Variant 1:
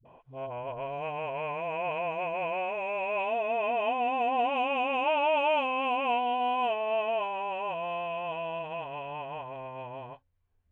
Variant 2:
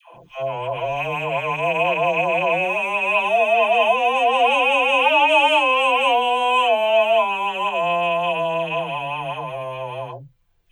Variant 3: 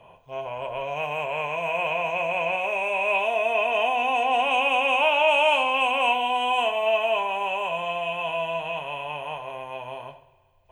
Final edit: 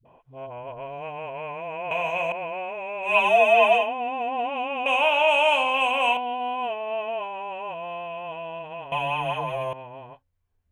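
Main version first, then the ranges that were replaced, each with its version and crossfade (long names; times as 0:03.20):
1
0:01.91–0:02.32: punch in from 3
0:03.09–0:03.80: punch in from 2, crossfade 0.16 s
0:04.86–0:06.17: punch in from 3
0:08.92–0:09.73: punch in from 2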